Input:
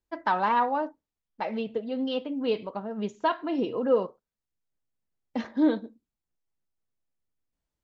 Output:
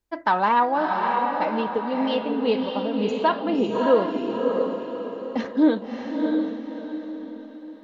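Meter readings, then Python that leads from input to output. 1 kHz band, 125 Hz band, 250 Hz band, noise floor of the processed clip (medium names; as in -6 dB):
+6.5 dB, +7.0 dB, +6.5 dB, -40 dBFS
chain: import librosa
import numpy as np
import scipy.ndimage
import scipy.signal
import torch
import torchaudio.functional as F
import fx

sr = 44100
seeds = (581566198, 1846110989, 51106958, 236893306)

y = fx.echo_diffused(x, sr, ms=626, feedback_pct=42, wet_db=-3.0)
y = y * librosa.db_to_amplitude(4.5)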